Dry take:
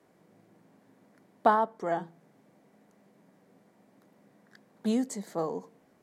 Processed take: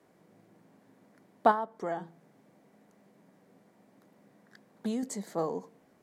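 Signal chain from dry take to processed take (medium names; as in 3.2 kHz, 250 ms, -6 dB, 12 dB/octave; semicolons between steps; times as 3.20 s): 1.51–5.03 s: compression 4:1, threshold -30 dBFS, peak gain reduction 7.5 dB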